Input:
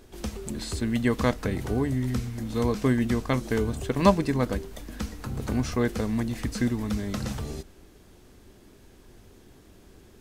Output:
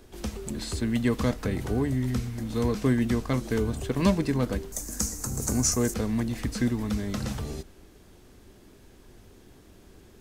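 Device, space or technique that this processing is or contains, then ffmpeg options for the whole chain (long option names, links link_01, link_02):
one-band saturation: -filter_complex "[0:a]asettb=1/sr,asplit=3[link_01][link_02][link_03];[link_01]atrim=end=4.724[link_04];[link_02]atrim=start=4.72:end=5.94,asetpts=PTS-STARTPTS,afade=type=in:duration=0.004:curve=qsin,afade=type=out:start_time=1.216:duration=0.004:curve=qsin,highshelf=frequency=4800:width_type=q:width=3:gain=13[link_05];[link_03]atrim=start=5.936[link_06];[link_04][link_05]acrossfade=duration=0.004:curve1=hsin:curve2=qsin[link_07];[link_07][link_06]acrossfade=duration=0.004:curve1=qsin:curve2=hsin,acrossover=split=370|3400[link_08][link_09][link_10];[link_09]asoftclip=type=tanh:threshold=-25.5dB[link_11];[link_08][link_11][link_10]amix=inputs=3:normalize=0"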